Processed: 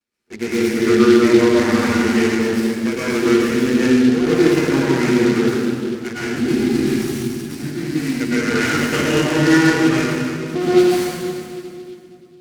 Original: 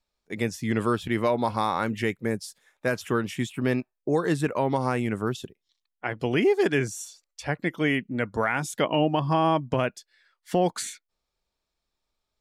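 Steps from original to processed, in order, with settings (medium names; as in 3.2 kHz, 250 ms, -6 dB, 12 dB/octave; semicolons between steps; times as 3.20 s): comb filter that takes the minimum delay 8.4 ms; high-order bell 900 Hz -11.5 dB; time-frequency box 6.22–8.20 s, 330–3700 Hz -12 dB; cabinet simulation 100–6600 Hz, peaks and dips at 120 Hz -8 dB, 240 Hz +3 dB, 360 Hz +5 dB, 1.4 kHz +10 dB, 3.6 kHz -7 dB; reverberation RT60 2.5 s, pre-delay 102 ms, DRR -10 dB; delay time shaken by noise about 3.3 kHz, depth 0.034 ms; trim +2.5 dB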